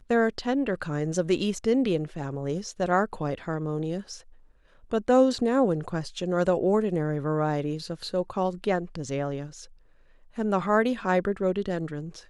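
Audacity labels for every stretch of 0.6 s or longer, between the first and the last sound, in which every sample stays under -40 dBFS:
4.210000	4.910000	silence
9.650000	10.360000	silence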